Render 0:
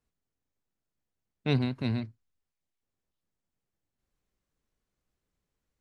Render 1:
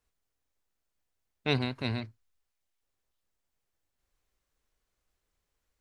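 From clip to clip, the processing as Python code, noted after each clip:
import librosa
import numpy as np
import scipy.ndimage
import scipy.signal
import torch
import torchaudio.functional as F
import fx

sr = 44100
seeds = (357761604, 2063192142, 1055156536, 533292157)

y = fx.peak_eq(x, sr, hz=180.0, db=-10.5, octaves=2.0)
y = F.gain(torch.from_numpy(y), 4.5).numpy()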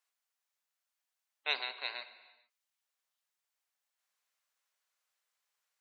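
y = scipy.signal.sosfilt(scipy.signal.bessel(4, 950.0, 'highpass', norm='mag', fs=sr, output='sos'), x)
y = fx.rev_gated(y, sr, seeds[0], gate_ms=480, shape='falling', drr_db=11.0)
y = fx.spec_gate(y, sr, threshold_db=-20, keep='strong')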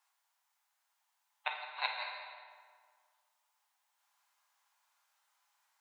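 y = fx.gate_flip(x, sr, shuts_db=-22.0, range_db=-29)
y = fx.ladder_highpass(y, sr, hz=780.0, resonance_pct=65)
y = fx.rev_fdn(y, sr, rt60_s=1.8, lf_ratio=1.0, hf_ratio=0.65, size_ms=29.0, drr_db=0.5)
y = F.gain(torch.from_numpy(y), 14.5).numpy()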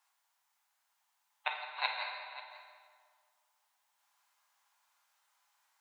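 y = x + 10.0 ** (-16.0 / 20.0) * np.pad(x, (int(537 * sr / 1000.0), 0))[:len(x)]
y = F.gain(torch.from_numpy(y), 1.5).numpy()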